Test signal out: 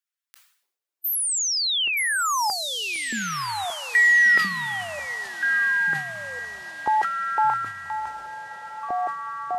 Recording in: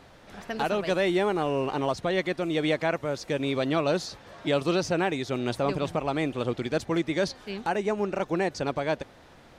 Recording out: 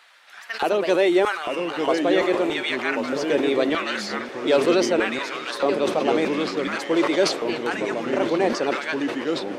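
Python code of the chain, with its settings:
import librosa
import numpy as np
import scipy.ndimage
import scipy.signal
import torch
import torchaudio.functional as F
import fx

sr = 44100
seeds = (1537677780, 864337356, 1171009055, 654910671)

y = fx.spec_quant(x, sr, step_db=15)
y = fx.filter_lfo_highpass(y, sr, shape='square', hz=0.8, low_hz=370.0, high_hz=1500.0, q=1.5)
y = fx.echo_diffused(y, sr, ms=1332, feedback_pct=45, wet_db=-13.0)
y = fx.echo_pitch(y, sr, ms=729, semitones=-3, count=3, db_per_echo=-6.0)
y = fx.sustainer(y, sr, db_per_s=89.0)
y = y * librosa.db_to_amplitude(4.0)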